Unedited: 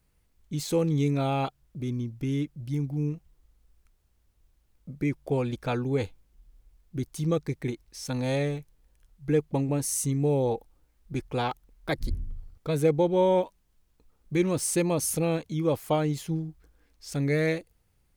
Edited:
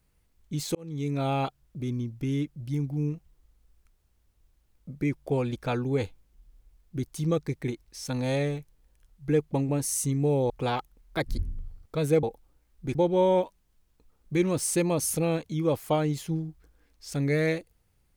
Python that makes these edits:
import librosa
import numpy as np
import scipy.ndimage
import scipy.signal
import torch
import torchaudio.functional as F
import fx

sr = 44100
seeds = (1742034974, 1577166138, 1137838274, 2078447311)

y = fx.edit(x, sr, fx.fade_in_span(start_s=0.75, length_s=0.55),
    fx.move(start_s=10.5, length_s=0.72, to_s=12.95), tone=tone)